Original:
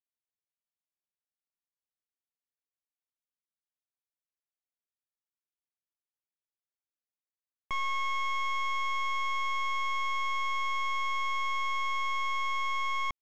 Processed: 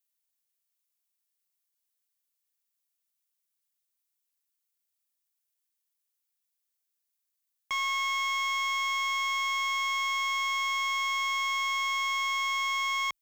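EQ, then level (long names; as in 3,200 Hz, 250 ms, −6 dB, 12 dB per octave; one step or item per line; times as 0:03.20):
spectral tilt +4 dB per octave
0.0 dB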